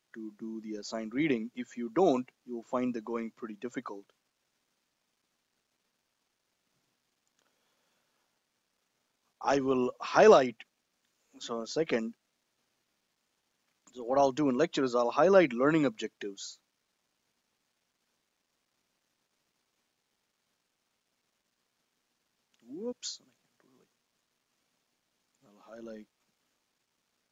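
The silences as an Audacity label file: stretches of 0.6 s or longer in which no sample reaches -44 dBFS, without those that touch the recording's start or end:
4.000000	9.410000	silence
10.620000	11.410000	silence
12.110000	13.970000	silence
16.520000	22.710000	silence
23.160000	25.690000	silence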